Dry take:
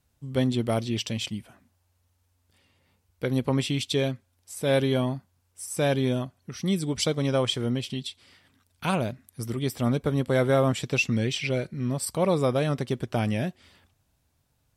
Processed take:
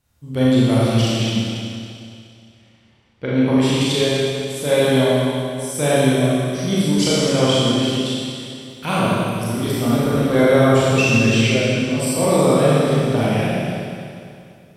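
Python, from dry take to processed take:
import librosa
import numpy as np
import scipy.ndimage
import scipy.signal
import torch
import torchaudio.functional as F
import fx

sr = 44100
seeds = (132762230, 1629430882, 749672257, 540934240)

y = fx.lowpass(x, sr, hz=3600.0, slope=12, at=(1.09, 3.46))
y = fx.rev_schroeder(y, sr, rt60_s=2.5, comb_ms=27, drr_db=-8.5)
y = F.gain(torch.from_numpy(y), 1.0).numpy()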